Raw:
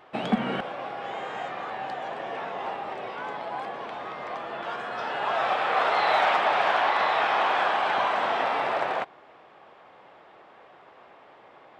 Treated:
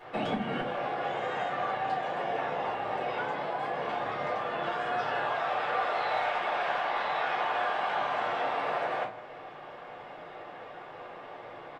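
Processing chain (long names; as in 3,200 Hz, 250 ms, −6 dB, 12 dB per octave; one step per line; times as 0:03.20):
downward compressor 4 to 1, threshold −37 dBFS, peak gain reduction 16.5 dB
on a send: single-tap delay 159 ms −16 dB
on the sum: rectangular room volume 140 cubic metres, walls furnished, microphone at 4 metres
level −2.5 dB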